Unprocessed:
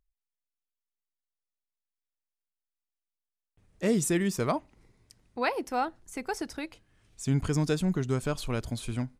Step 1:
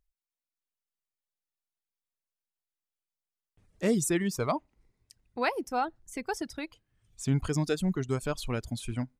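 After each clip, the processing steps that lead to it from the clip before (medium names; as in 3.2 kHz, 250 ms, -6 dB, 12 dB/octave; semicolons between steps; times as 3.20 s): reverb removal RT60 1.1 s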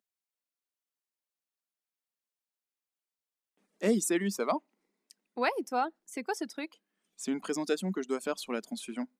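elliptic high-pass 200 Hz, stop band 40 dB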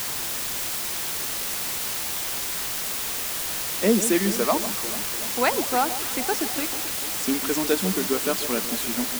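word length cut 6-bit, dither triangular; echo whose repeats swap between lows and highs 146 ms, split 1.1 kHz, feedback 79%, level -12 dB; trim +7 dB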